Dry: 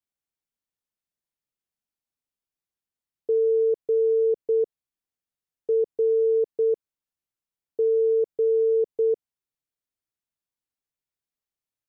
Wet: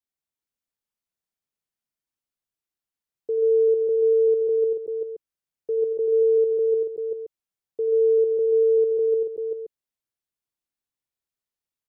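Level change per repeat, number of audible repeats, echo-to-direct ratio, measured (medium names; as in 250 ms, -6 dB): no regular repeats, 5, -0.5 dB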